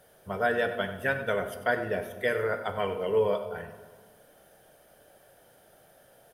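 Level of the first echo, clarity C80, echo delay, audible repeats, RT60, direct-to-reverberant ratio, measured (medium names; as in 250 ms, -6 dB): -13.5 dB, 10.0 dB, 95 ms, 1, 1.5 s, 7.0 dB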